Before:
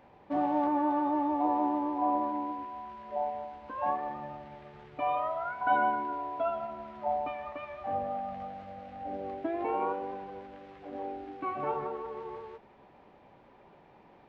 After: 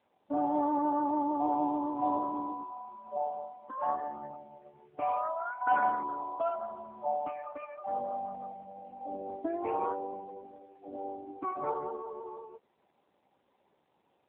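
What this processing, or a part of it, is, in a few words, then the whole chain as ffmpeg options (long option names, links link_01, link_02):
mobile call with aggressive noise cancelling: -af "highpass=160,afftdn=noise_reduction=14:noise_floor=-41" -ar 8000 -c:a libopencore_amrnb -b:a 7950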